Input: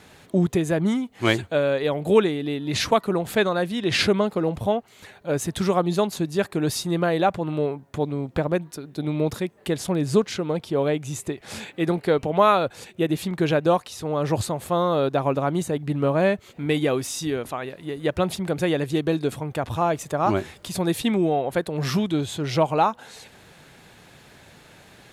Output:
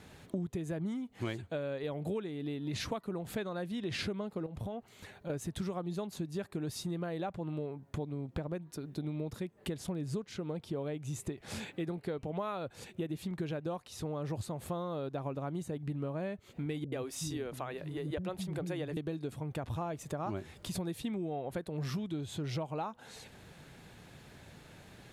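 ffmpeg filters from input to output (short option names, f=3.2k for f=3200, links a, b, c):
-filter_complex "[0:a]asettb=1/sr,asplit=3[a][b][c];[a]atrim=end=4.464[d];[b]atrim=start=4.46:end=5.3,asetpts=PTS-STARTPTS,afade=t=in:d=0.004:c=qsin,afade=t=out:st=0.836:d=0.004:c=qsin,acompressor=threshold=-30dB:ratio=6:attack=3.2:release=140:knee=1:detection=peak[e];[c]atrim=start=5.296[f];[d][e]acrossfade=d=0.004:c1=hsin:c2=qsin[g];[g][f]acrossfade=d=0.004:c1=qsin:c2=hsin,asettb=1/sr,asplit=3[h][i][j];[h]atrim=end=16.844[k];[i]atrim=start=16.84:end=18.97,asetpts=PTS-STARTPTS,afade=t=in:d=0.004:c=qsin,afade=t=out:st=2.126:d=0.004:c=qsin,acrossover=split=250[l][m];[m]adelay=80[n];[l][n]amix=inputs=2:normalize=0,atrim=end_sample=93933[o];[j]atrim=start=18.966[p];[k][o]acrossfade=d=0.004:c1=hsin:c2=qsin[q];[q][p]acrossfade=d=0.004:c1=qsin:c2=hsin,lowshelf=f=290:g=7.5,acompressor=threshold=-27dB:ratio=6,volume=-7.5dB"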